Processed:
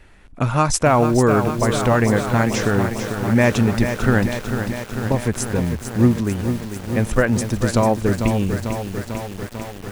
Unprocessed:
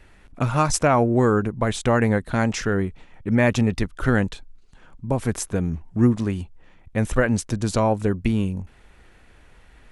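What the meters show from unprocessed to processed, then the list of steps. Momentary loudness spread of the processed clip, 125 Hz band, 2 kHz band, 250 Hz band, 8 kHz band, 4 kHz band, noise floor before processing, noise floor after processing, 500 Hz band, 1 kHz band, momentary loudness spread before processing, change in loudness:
10 LU, +4.0 dB, +4.0 dB, +3.5 dB, +4.0 dB, +4.5 dB, −52 dBFS, −38 dBFS, +3.5 dB, +4.0 dB, 10 LU, +3.0 dB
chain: feedback echo at a low word length 446 ms, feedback 80%, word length 6 bits, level −7.5 dB
level +2.5 dB

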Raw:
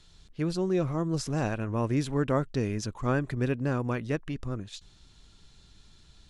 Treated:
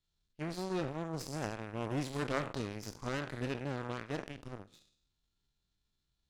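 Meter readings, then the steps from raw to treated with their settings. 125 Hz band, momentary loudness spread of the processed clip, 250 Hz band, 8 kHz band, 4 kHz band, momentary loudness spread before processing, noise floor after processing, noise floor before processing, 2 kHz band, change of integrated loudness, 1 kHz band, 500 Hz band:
−11.5 dB, 9 LU, −10.0 dB, −6.5 dB, −4.0 dB, 8 LU, −83 dBFS, −58 dBFS, −5.0 dB, −9.0 dB, −6.0 dB, −8.5 dB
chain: peak hold with a decay on every bin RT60 0.83 s
harmonic generator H 2 −7 dB, 5 −37 dB, 7 −17 dB, 8 −27 dB, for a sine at −13 dBFS
level −7 dB

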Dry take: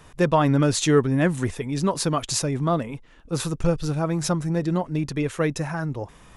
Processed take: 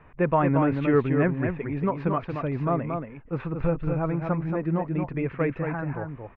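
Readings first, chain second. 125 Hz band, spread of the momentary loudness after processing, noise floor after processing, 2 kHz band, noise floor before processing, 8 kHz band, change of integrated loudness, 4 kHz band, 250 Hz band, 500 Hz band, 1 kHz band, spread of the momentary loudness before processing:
−2.5 dB, 10 LU, −50 dBFS, −2.5 dB, −50 dBFS, below −40 dB, −3.0 dB, below −20 dB, −2.0 dB, −2.0 dB, −1.5 dB, 10 LU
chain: Chebyshev low-pass filter 2,400 Hz, order 4
single-tap delay 228 ms −5.5 dB
level −2.5 dB

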